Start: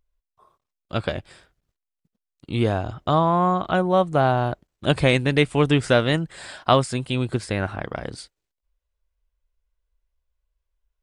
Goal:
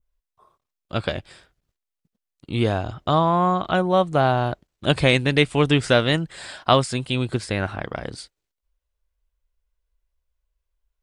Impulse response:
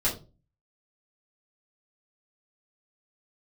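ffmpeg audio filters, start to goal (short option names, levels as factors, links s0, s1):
-af "adynamicequalizer=threshold=0.0141:dfrequency=4000:dqfactor=0.72:tfrequency=4000:tqfactor=0.72:attack=5:release=100:ratio=0.375:range=2:mode=boostabove:tftype=bell"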